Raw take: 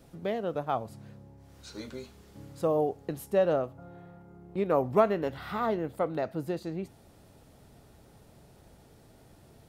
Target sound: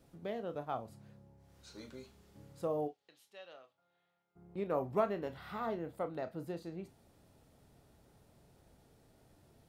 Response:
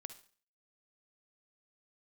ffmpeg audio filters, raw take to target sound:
-filter_complex "[0:a]asplit=3[a][b][c];[a]afade=t=out:st=2.87:d=0.02[d];[b]bandpass=f=3.5k:t=q:w=1.7:csg=0,afade=t=in:st=2.87:d=0.02,afade=t=out:st=4.35:d=0.02[e];[c]afade=t=in:st=4.35:d=0.02[f];[d][e][f]amix=inputs=3:normalize=0[g];[1:a]atrim=start_sample=2205,afade=t=out:st=0.16:d=0.01,atrim=end_sample=7497,asetrate=88200,aresample=44100[h];[g][h]afir=irnorm=-1:irlink=0,volume=2.5dB"

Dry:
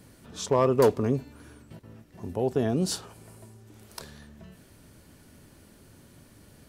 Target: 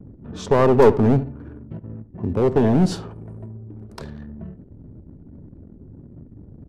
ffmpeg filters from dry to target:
-filter_complex "[0:a]acrossover=split=420|910|5400[a][b][c][d];[a]acontrast=74[e];[e][b][c][d]amix=inputs=4:normalize=0,anlmdn=0.0158,aemphasis=mode=reproduction:type=75fm,aeval=exprs='clip(val(0),-1,0.119)':c=same,asplit=2[f][g];[g]adelay=73,lowpass=f=1.8k:p=1,volume=-15dB,asplit=2[h][i];[i]adelay=73,lowpass=f=1.8k:p=1,volume=0.31,asplit=2[j][k];[k]adelay=73,lowpass=f=1.8k:p=1,volume=0.31[l];[f][h][j][l]amix=inputs=4:normalize=0,volume=5.5dB"

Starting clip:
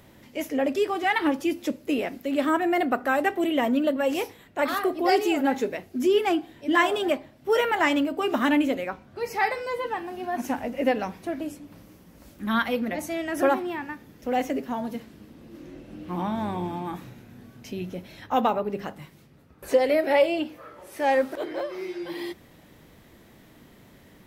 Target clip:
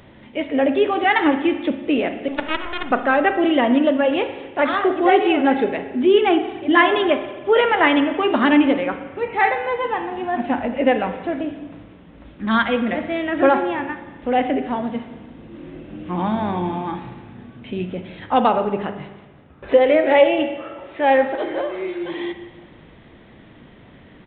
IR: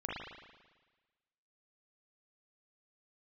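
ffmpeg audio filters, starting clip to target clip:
-filter_complex "[0:a]asettb=1/sr,asplit=3[a][b][c];[a]atrim=end=2.284[d];[b]atrim=start=2.28:end=2.91,asetpts=PTS-STARTPTS,afade=t=in:d=0.004:c=qsin,afade=t=out:st=0.626:d=0.004:c=qsin,aeval=exprs='0.237*(cos(1*acos(clip(val(0)/0.237,-1,1)))-cos(1*PI/2))+0.106*(cos(3*acos(clip(val(0)/0.237,-1,1)))-cos(3*PI/2))+0.00596*(cos(4*acos(clip(val(0)/0.237,-1,1)))-cos(4*PI/2))':c=same[e];[c]atrim=start=2.906[f];[d][e]acrossfade=d=0.004:c1=hsin:c2=qsin[g];[g][f]acrossfade=d=0.004:c1=qsin:c2=hsin,asplit=2[h][i];[1:a]atrim=start_sample=2205[j];[i][j]afir=irnorm=-1:irlink=0,volume=-9dB[k];[h][k]amix=inputs=2:normalize=0,aresample=8000,aresample=44100,volume=4.5dB"

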